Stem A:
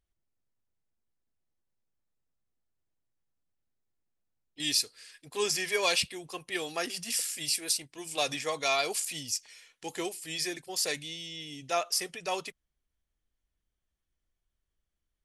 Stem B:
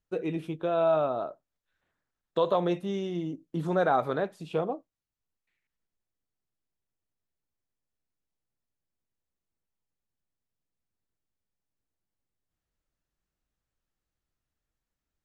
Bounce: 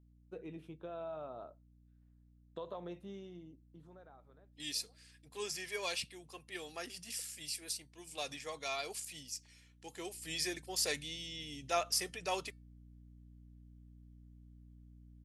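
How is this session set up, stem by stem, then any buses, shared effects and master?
9.99 s -8.5 dB -> 10.27 s -1 dB, 0.00 s, no send, hum 60 Hz, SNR 17 dB
-12.0 dB, 0.20 s, no send, compression 2.5:1, threshold -27 dBFS, peak gain reduction 5.5 dB; auto duck -23 dB, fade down 1.45 s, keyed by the first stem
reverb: none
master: feedback comb 450 Hz, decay 0.24 s, harmonics all, mix 30%

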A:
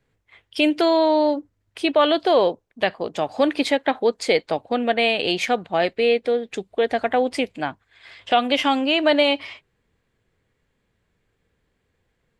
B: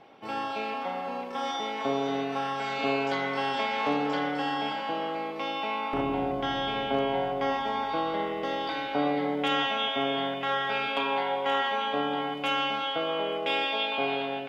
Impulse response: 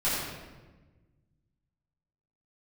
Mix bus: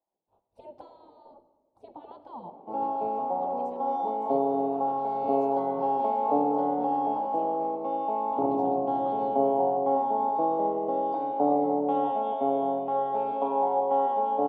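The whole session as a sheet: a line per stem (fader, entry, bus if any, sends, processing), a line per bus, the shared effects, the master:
-10.5 dB, 0.00 s, send -21 dB, peak limiter -12.5 dBFS, peak gain reduction 7.5 dB; spectral gate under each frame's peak -15 dB weak
-0.5 dB, 2.45 s, no send, high-pass 170 Hz 12 dB/octave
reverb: on, RT60 1.3 s, pre-delay 5 ms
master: FFT filter 120 Hz 0 dB, 880 Hz +6 dB, 1.7 kHz -29 dB, 3.8 kHz -27 dB

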